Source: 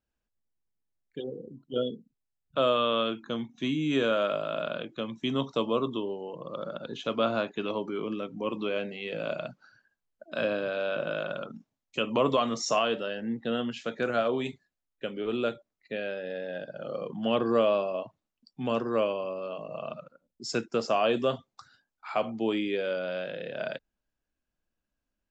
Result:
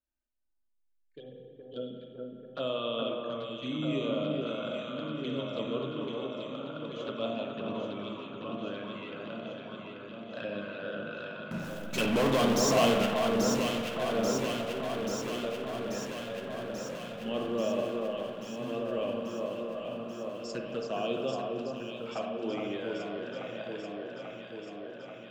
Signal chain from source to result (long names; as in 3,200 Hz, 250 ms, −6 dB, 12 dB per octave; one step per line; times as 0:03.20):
flanger swept by the level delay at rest 3.3 ms, full sweep at −23 dBFS
0:11.51–0:13.06: power curve on the samples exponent 0.35
delay that swaps between a low-pass and a high-pass 418 ms, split 1,700 Hz, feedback 84%, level −3 dB
spring reverb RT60 1.7 s, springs 39/59 ms, chirp 65 ms, DRR 3 dB
level −7 dB